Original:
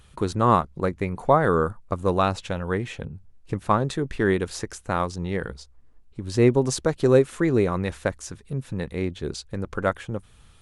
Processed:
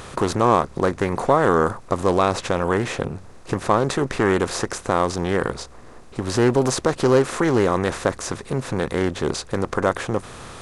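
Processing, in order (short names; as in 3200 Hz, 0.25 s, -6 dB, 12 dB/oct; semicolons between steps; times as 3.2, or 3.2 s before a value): per-bin compression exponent 0.6; low shelf 320 Hz -4.5 dB; in parallel at -1 dB: limiter -14.5 dBFS, peak gain reduction 11.5 dB; on the sum: Doppler distortion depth 0.22 ms; gain -2.5 dB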